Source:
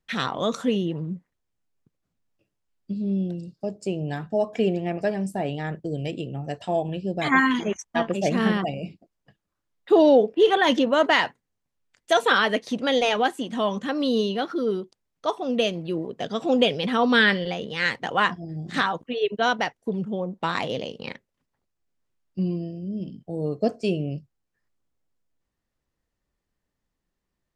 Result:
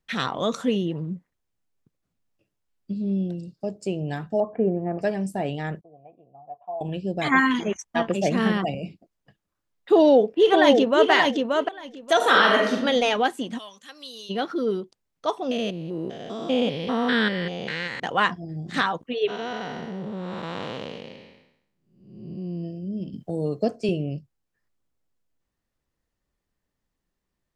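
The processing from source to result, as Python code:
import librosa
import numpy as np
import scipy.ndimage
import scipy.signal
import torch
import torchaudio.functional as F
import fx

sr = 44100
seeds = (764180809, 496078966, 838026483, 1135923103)

y = fx.cheby2_lowpass(x, sr, hz=4800.0, order=4, stop_db=60, at=(4.4, 4.99))
y = fx.formant_cascade(y, sr, vowel='a', at=(5.81, 6.81))
y = fx.band_squash(y, sr, depth_pct=40, at=(8.08, 8.75))
y = fx.echo_throw(y, sr, start_s=9.94, length_s=1.16, ms=580, feedback_pct=15, wet_db=-3.5)
y = fx.reverb_throw(y, sr, start_s=12.16, length_s=0.58, rt60_s=0.9, drr_db=-1.5)
y = fx.pre_emphasis(y, sr, coefficient=0.97, at=(13.57, 14.29), fade=0.02)
y = fx.spec_steps(y, sr, hold_ms=200, at=(15.51, 18.0))
y = fx.spec_blur(y, sr, span_ms=481.0, at=(19.27, 22.63), fade=0.02)
y = fx.band_squash(y, sr, depth_pct=40, at=(23.13, 23.89))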